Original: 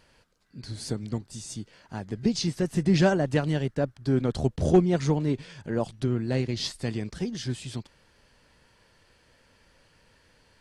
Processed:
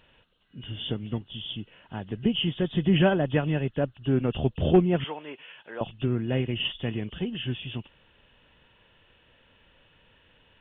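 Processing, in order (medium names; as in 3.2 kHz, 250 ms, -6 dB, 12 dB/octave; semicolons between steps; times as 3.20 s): knee-point frequency compression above 2.5 kHz 4:1; 5.04–5.81 s: high-pass 730 Hz 12 dB/octave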